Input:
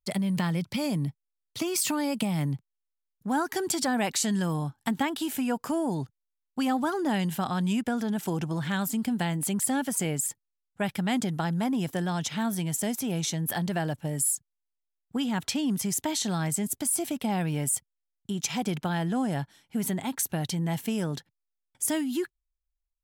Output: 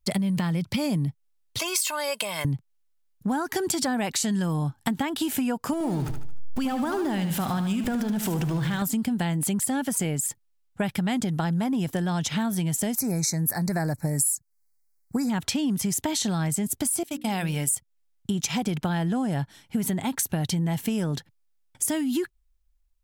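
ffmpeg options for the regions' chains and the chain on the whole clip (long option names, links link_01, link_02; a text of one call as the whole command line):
ffmpeg -i in.wav -filter_complex "[0:a]asettb=1/sr,asplit=3[link_01][link_02][link_03];[link_01]atrim=end=1.594[link_04];[link_02]atrim=start=1.59:end=2.45,asetpts=PTS-STARTPTS,afade=type=in:duration=0.004:curve=qsin,afade=type=out:start_time=0.856:duration=0.004:curve=qsin,highpass=690,aecho=1:1:1.9:0.68,atrim=end_sample=37926[link_05];[link_03]atrim=start=2.446[link_06];[link_04][link_05]acrossfade=duration=0.004:curve1=hsin:curve2=qsin[link_07];[link_07][link_06]acrossfade=duration=0.004:curve1=qsin:curve2=hsin,asettb=1/sr,asplit=3[link_08][link_09][link_10];[link_08]atrim=end=5.734[link_11];[link_09]atrim=start=5.73:end=8.82,asetpts=PTS-STARTPTS,afade=type=in:duration=0.004:curve=qsin,afade=type=out:start_time=3.086:duration=0.004:curve=qsin,aeval=exprs='val(0)+0.5*0.0158*sgn(val(0))':channel_layout=same,acompressor=threshold=-31dB:ratio=2.5:attack=3.2:release=140:knee=1:detection=peak,aecho=1:1:75|150|225|300|375:0.355|0.149|0.0626|0.0263|0.011,atrim=end_sample=136269[link_12];[link_10]atrim=start=8.816[link_13];[link_11][link_12]acrossfade=duration=0.004:curve1=hsin:curve2=qsin[link_14];[link_14][link_13]acrossfade=duration=0.004:curve1=qsin:curve2=hsin,asettb=1/sr,asplit=3[link_15][link_16][link_17];[link_15]atrim=end=12.964[link_18];[link_16]atrim=start=12.96:end=15.3,asetpts=PTS-STARTPTS,afade=type=in:duration=0.004:curve=qsin,afade=type=out:start_time=2.336:duration=0.004:curve=qsin,asuperstop=centerf=3100:order=8:qfactor=1.8,highshelf=frequency=4600:gain=9.5[link_19];[link_17]atrim=start=15.296[link_20];[link_18][link_19]acrossfade=duration=0.004:curve1=hsin:curve2=qsin[link_21];[link_21][link_20]acrossfade=duration=0.004:curve1=qsin:curve2=hsin,asettb=1/sr,asplit=3[link_22][link_23][link_24];[link_22]atrim=end=17.034[link_25];[link_23]atrim=start=17.03:end=17.75,asetpts=PTS-STARTPTS,afade=type=in:duration=0.004:curve=qsin,afade=type=out:start_time=0.716:duration=0.004:curve=qsin,agate=range=-33dB:threshold=-27dB:ratio=3:release=100:detection=peak,tiltshelf=frequency=1500:gain=-5,bandreject=frequency=60:width_type=h:width=6,bandreject=frequency=120:width_type=h:width=6,bandreject=frequency=180:width_type=h:width=6,bandreject=frequency=240:width_type=h:width=6,bandreject=frequency=300:width_type=h:width=6,bandreject=frequency=360:width_type=h:width=6,bandreject=frequency=420:width_type=h:width=6,bandreject=frequency=480:width_type=h:width=6,bandreject=frequency=540:width_type=h:width=6[link_26];[link_24]atrim=start=17.746[link_27];[link_25][link_26]acrossfade=duration=0.004:curve1=hsin:curve2=qsin[link_28];[link_28][link_27]acrossfade=duration=0.004:curve1=qsin:curve2=hsin,lowshelf=frequency=110:gain=9.5,acompressor=threshold=-31dB:ratio=5,volume=7.5dB" out.wav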